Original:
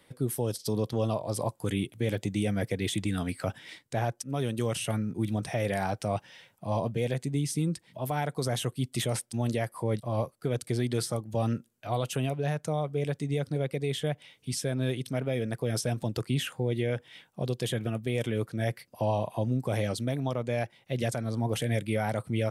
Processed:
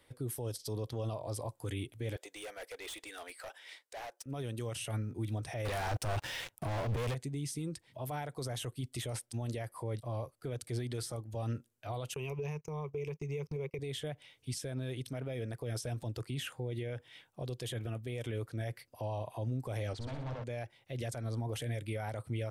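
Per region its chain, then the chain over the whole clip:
2.16–4.26 s: high-pass 470 Hz 24 dB/octave + hard clipper -36.5 dBFS
5.65–7.15 s: waveshaping leveller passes 5 + compressor with a negative ratio -27 dBFS
12.14–13.79 s: rippled EQ curve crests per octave 0.78, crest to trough 17 dB + compression 4:1, threshold -29 dBFS + gate -39 dBFS, range -24 dB
19.93–20.44 s: overload inside the chain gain 34.5 dB + distance through air 110 m + flutter echo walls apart 10.5 m, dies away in 0.71 s
whole clip: peaking EQ 190 Hz -13.5 dB 0.45 oct; peak limiter -26 dBFS; bass shelf 110 Hz +8 dB; trim -5 dB

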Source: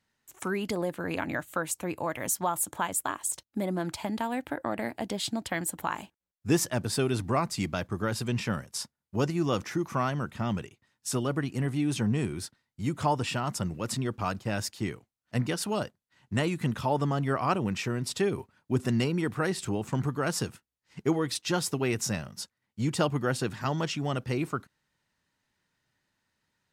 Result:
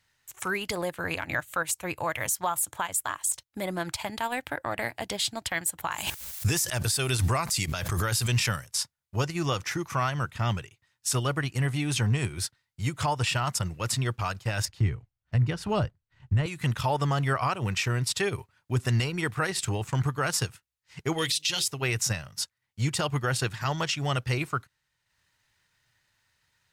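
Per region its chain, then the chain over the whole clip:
5.91–8.68 s: treble shelf 4.7 kHz +11.5 dB + swell ahead of each attack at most 33 dB/s
14.65–16.46 s: block-companded coder 7-bit + RIAA curve playback
21.18–21.68 s: resonant high shelf 2 kHz +12 dB, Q 1.5 + de-hum 50.68 Hz, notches 12
whole clip: FFT filter 120 Hz 0 dB, 220 Hz -14 dB, 480 Hz -7 dB, 2.1 kHz +1 dB; transient shaper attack -2 dB, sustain -7 dB; peak limiter -24.5 dBFS; trim +7.5 dB

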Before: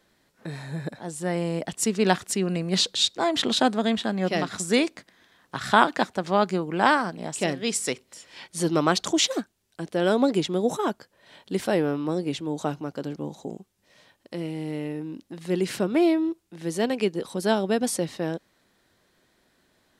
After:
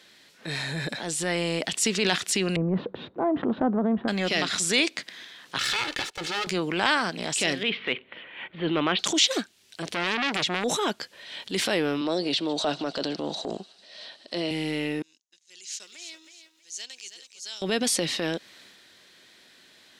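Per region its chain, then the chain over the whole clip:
2.56–4.08 s: low-pass 1.1 kHz 24 dB/octave + bass shelf 370 Hz +8 dB
5.58–6.47 s: comb filter that takes the minimum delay 2.3 ms + gate -41 dBFS, range -15 dB + compression, threshold -29 dBFS
7.63–8.99 s: steep low-pass 3.4 kHz 48 dB/octave + level-controlled noise filter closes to 1.6 kHz, open at -17.5 dBFS
9.82–10.64 s: peaking EQ 74 Hz +9 dB 1.5 oct + transformer saturation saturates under 2.6 kHz
12.01–14.51 s: cabinet simulation 180–8600 Hz, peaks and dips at 650 Hz +10 dB, 2.3 kHz -6 dB, 4.3 kHz +7 dB, 6.8 kHz -9 dB + feedback echo behind a high-pass 149 ms, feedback 69%, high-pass 1.8 kHz, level -22 dB
15.02–17.62 s: gate -38 dBFS, range -26 dB + band-pass filter 6.6 kHz, Q 6 + bit-crushed delay 319 ms, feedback 35%, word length 12-bit, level -9.5 dB
whole clip: frequency weighting D; transient shaper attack -7 dB, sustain +4 dB; compression 2:1, threshold -31 dBFS; trim +5 dB

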